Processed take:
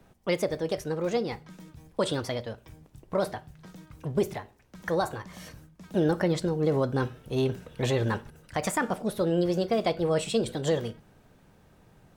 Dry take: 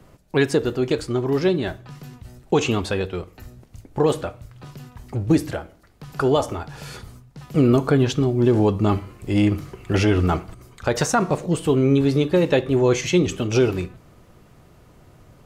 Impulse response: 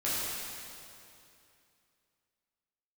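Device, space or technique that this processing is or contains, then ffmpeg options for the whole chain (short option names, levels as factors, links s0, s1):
nightcore: -af "asetrate=56007,aresample=44100,volume=0.398"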